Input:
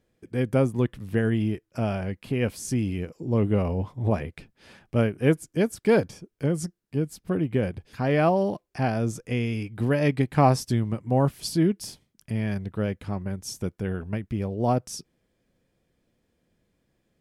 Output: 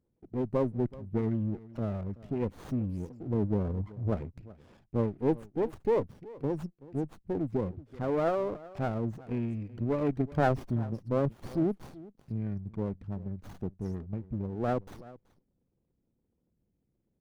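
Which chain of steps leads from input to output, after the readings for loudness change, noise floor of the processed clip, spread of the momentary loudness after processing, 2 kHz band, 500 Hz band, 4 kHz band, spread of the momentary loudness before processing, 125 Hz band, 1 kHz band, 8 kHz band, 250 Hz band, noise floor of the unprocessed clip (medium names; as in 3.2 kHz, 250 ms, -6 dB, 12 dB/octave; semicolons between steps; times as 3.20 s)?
-6.5 dB, -78 dBFS, 10 LU, -11.5 dB, -5.5 dB, under -15 dB, 9 LU, -7.5 dB, -7.5 dB, under -20 dB, -6.5 dB, -76 dBFS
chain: resonances exaggerated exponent 2; delay 379 ms -19.5 dB; sliding maximum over 17 samples; trim -6 dB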